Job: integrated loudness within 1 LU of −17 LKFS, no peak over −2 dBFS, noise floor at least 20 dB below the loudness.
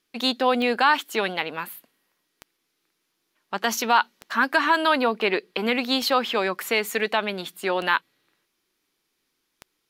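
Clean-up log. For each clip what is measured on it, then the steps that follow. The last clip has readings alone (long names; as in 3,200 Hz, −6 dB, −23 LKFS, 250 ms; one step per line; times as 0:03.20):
number of clicks 6; integrated loudness −23.0 LKFS; sample peak −6.0 dBFS; target loudness −17.0 LKFS
→ click removal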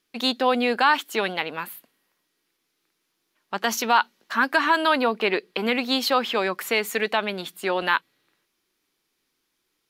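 number of clicks 0; integrated loudness −23.0 LKFS; sample peak −6.0 dBFS; target loudness −17.0 LKFS
→ level +6 dB
brickwall limiter −2 dBFS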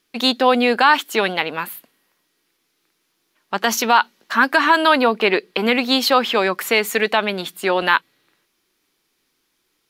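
integrated loudness −17.5 LKFS; sample peak −2.0 dBFS; background noise floor −70 dBFS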